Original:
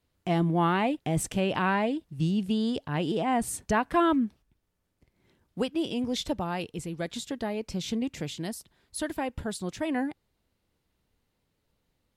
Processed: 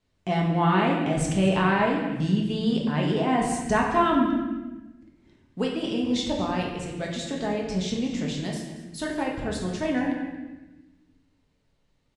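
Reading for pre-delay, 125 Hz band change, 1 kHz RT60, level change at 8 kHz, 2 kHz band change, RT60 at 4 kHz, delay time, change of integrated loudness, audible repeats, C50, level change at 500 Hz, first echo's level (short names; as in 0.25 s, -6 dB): 5 ms, +4.5 dB, 1.1 s, +0.5 dB, +4.5 dB, 0.95 s, 0.229 s, +3.5 dB, 1, 3.0 dB, +4.0 dB, -14.5 dB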